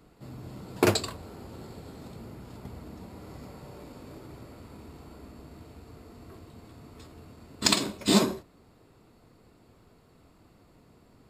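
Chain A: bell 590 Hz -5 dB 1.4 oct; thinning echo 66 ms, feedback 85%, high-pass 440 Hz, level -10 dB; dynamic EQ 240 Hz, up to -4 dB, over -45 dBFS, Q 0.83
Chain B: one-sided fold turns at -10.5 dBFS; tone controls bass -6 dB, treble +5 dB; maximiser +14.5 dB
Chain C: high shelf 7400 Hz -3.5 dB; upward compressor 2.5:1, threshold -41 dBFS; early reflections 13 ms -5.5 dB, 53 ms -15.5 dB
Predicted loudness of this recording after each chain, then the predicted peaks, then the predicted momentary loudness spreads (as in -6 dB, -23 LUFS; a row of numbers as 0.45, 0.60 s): -28.5, -20.0, -28.0 LUFS; -6.0, -1.0, -6.5 dBFS; 23, 22, 22 LU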